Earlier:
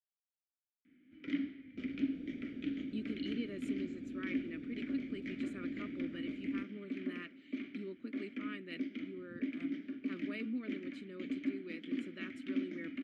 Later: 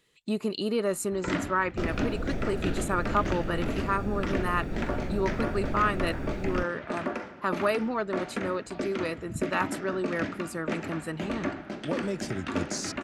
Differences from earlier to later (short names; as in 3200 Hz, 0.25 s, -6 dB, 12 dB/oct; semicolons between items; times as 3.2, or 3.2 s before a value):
speech: entry -2.65 s; master: remove vowel filter i